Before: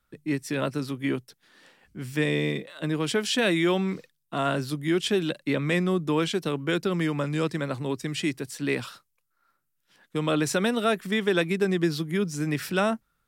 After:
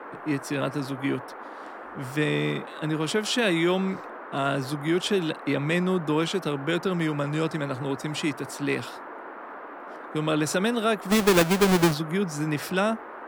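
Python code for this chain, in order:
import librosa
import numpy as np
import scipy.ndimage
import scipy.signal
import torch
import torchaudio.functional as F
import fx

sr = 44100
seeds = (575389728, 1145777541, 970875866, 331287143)

y = fx.halfwave_hold(x, sr, at=(11.09, 11.93), fade=0.02)
y = fx.dmg_noise_band(y, sr, seeds[0], low_hz=260.0, high_hz=1500.0, level_db=-40.0)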